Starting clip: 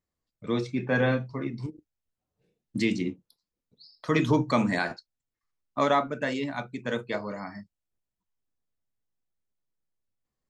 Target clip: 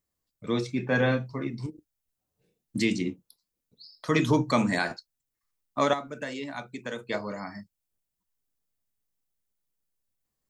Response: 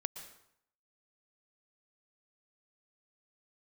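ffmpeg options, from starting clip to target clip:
-filter_complex "[0:a]highshelf=f=6.8k:g=11,asettb=1/sr,asplit=3[a][b][c];[a]atrim=end=5.934[d];[b]atrim=start=5.93:end=7.09,asetpts=PTS-STARTPTS,afade=t=in:d=0.004:c=qsin,afade=t=out:st=1.156:d=0.004:c=qsin,acrossover=split=260|5000[e][f][g];[e]acompressor=threshold=-46dB:ratio=4[h];[f]acompressor=threshold=-33dB:ratio=4[i];[g]acompressor=threshold=-54dB:ratio=4[j];[h][i][j]amix=inputs=3:normalize=0[k];[c]atrim=start=7.086[l];[d][k]acrossfade=d=0.004:c1=hsin:c2=qsin[m];[m][l]acrossfade=d=0.004:c1=qsin:c2=hsin"

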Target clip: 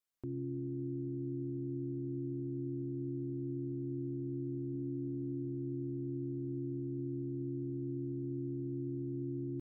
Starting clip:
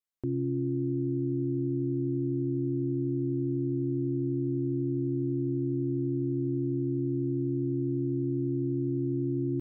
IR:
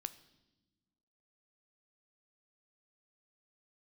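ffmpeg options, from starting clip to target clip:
-filter_complex "[0:a]asplit=3[a][b][c];[a]afade=t=out:st=4.73:d=0.02[d];[b]equalizer=f=220:w=2.9:g=10,afade=t=in:st=4.73:d=0.02,afade=t=out:st=5.42:d=0.02[e];[c]afade=t=in:st=5.42:d=0.02[f];[d][e][f]amix=inputs=3:normalize=0,alimiter=level_in=9.5dB:limit=-24dB:level=0:latency=1:release=82,volume=-9.5dB,volume=1dB"

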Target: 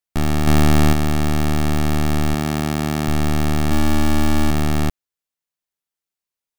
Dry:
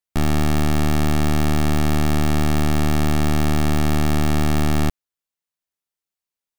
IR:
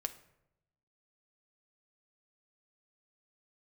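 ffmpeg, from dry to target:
-filter_complex "[0:a]asettb=1/sr,asplit=3[a][b][c];[a]atrim=end=0.474[d];[b]atrim=start=0.47:end=0.93,asetpts=PTS-STARTPTS,afade=t=in:d=0.004:c=qsin,afade=t=out:st=0.456:d=0.004:c=qsin,acontrast=32[e];[c]atrim=start=0.926[f];[d][e]acrossfade=d=0.004:c1=hsin:c2=qsin[g];[g][f]acrossfade=d=0.004:c1=qsin:c2=hsin,asettb=1/sr,asplit=3[h][i][j];[h]atrim=end=2.344[k];[i]atrim=start=2.34:end=3.08,asetpts=PTS-STARTPTS,afade=t=in:d=0.004:c=qsin,afade=t=out:st=0.736:d=0.004:c=qsin,highpass=110[l];[j]atrim=start=3.076[m];[k][l]acrossfade=d=0.004:c1=hsin:c2=qsin[n];[n][m]acrossfade=d=0.004:c1=qsin:c2=hsin,asettb=1/sr,asplit=3[o][p][q];[o]atrim=end=3.694[r];[p]atrim=start=3.69:end=4.51,asetpts=PTS-STARTPTS,afade=t=in:d=0.004:c=qsin,afade=t=out:st=0.816:d=0.004:c=qsin,asplit=2[s][t];[t]adelay=23,volume=-3dB[u];[s][u]amix=inputs=2:normalize=0,atrim=end_sample=36162[v];[q]atrim=start=4.506[w];[r][v]acrossfade=d=0.004:c1=hsin:c2=qsin[x];[x][w]acrossfade=d=0.004:c1=qsin:c2=hsin"

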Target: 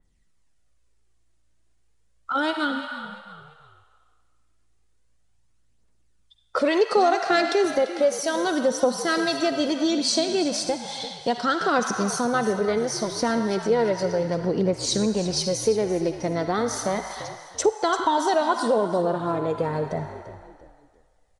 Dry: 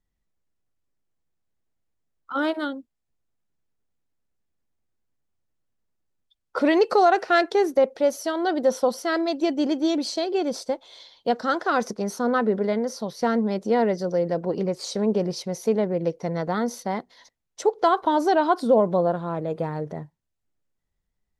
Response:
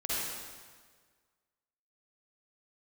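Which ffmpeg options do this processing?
-filter_complex "[0:a]aphaser=in_gain=1:out_gain=1:delay=3.4:decay=0.43:speed=0.34:type=triangular,asplit=2[a][b];[b]highpass=f=800:w=0.5412,highpass=f=800:w=1.3066[c];[1:a]atrim=start_sample=2205[d];[c][d]afir=irnorm=-1:irlink=0,volume=-11.5dB[e];[a][e]amix=inputs=2:normalize=0,aresample=22050,aresample=44100,highshelf=f=8.6k:g=8,acompressor=threshold=-35dB:ratio=2,asplit=4[f][g][h][i];[g]adelay=342,afreqshift=-57,volume=-13.5dB[j];[h]adelay=684,afreqshift=-114,volume=-22.4dB[k];[i]adelay=1026,afreqshift=-171,volume=-31.2dB[l];[f][j][k][l]amix=inputs=4:normalize=0,adynamicequalizer=threshold=0.0141:dfrequency=3100:dqfactor=0.7:tfrequency=3100:tqfactor=0.7:attack=5:release=100:ratio=0.375:range=2:mode=boostabove:tftype=highshelf,volume=8dB"

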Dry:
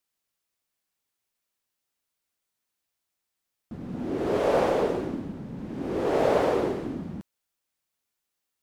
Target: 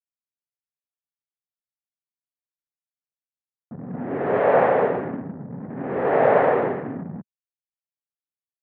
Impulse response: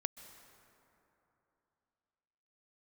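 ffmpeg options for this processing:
-af "anlmdn=0.398,highpass=f=120:w=0.5412,highpass=f=120:w=1.3066,equalizer=f=210:t=q:w=4:g=-4,equalizer=f=330:t=q:w=4:g=-10,equalizer=f=750:t=q:w=4:g=3,equalizer=f=1.8k:t=q:w=4:g=6,lowpass=f=2.2k:w=0.5412,lowpass=f=2.2k:w=1.3066,volume=6dB"

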